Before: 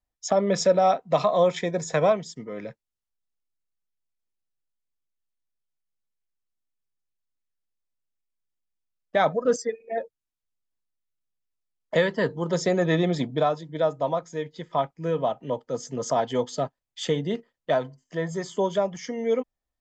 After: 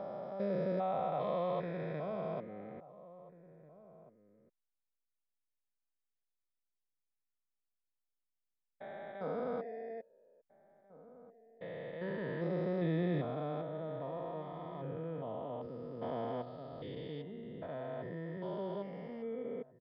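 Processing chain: stepped spectrum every 0.4 s; air absorption 310 m; outdoor echo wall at 290 m, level -18 dB; downsampling 11025 Hz; gain -7.5 dB

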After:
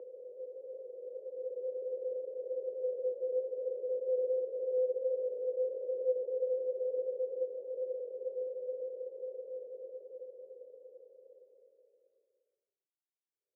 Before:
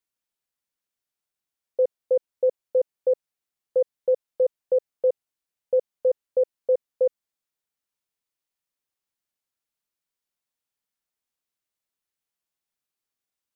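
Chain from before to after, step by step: Paulstretch 50×, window 0.25 s, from 2.04; ladder band-pass 410 Hz, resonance 60%; gain -4.5 dB

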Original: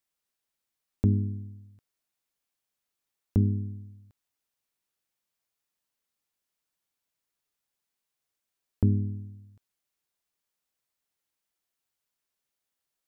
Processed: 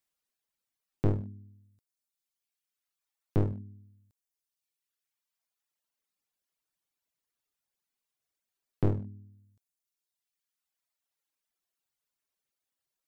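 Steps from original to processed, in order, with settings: one-sided fold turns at -26 dBFS; reverb removal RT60 1.8 s

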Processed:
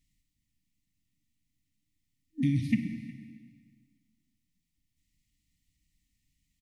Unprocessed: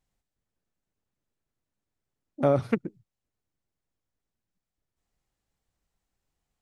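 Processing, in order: FFT band-reject 320–1800 Hz; in parallel at +3 dB: compressor, threshold -34 dBFS, peak gain reduction 12 dB; on the sum: echo 0.362 s -22 dB; plate-style reverb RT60 1.8 s, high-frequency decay 0.95×, DRR 6 dB; gain -2.5 dB

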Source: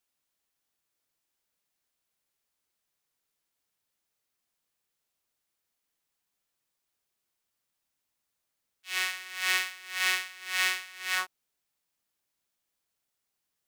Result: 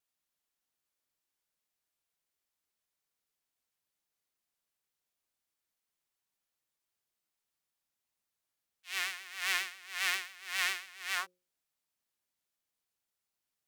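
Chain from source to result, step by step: vibrato 7.4 Hz 87 cents; notches 60/120/180/240/300/360/420/480/540 Hz; gain -5 dB

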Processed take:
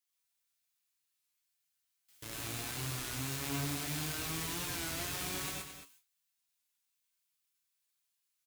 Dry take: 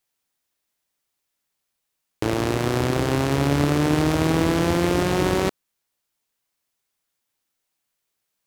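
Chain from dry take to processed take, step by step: level-crossing sampler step -25.5 dBFS; high shelf 6600 Hz +9 dB; added noise white -51 dBFS; passive tone stack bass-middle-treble 5-5-5; resonator 140 Hz, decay 0.22 s, harmonics all, mix 70%; echo 0.219 s -9.5 dB; gate with hold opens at -50 dBFS; non-linear reverb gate 0.15 s rising, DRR -2.5 dB; record warp 33 1/3 rpm, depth 100 cents; gain -2.5 dB

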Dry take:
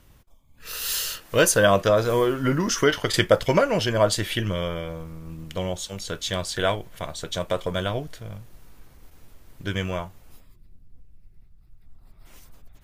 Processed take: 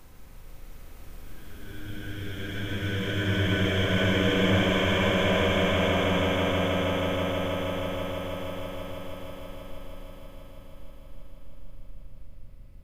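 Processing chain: Paulstretch 5.4×, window 1.00 s, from 9.02; swelling echo 0.16 s, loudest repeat 5, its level -5.5 dB; spring tank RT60 3 s, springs 39 ms, chirp 35 ms, DRR 0.5 dB

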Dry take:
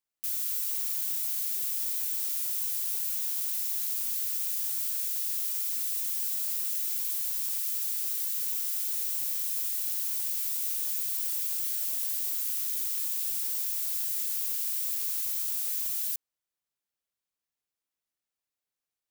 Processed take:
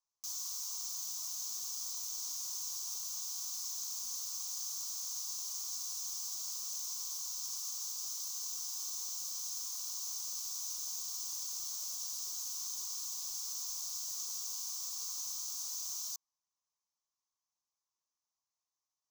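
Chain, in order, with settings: EQ curve 130 Hz 0 dB, 240 Hz -4 dB, 500 Hz -4 dB, 1100 Hz +14 dB, 1800 Hz -18 dB, 6200 Hz +15 dB, 9100 Hz -7 dB; gain -7.5 dB

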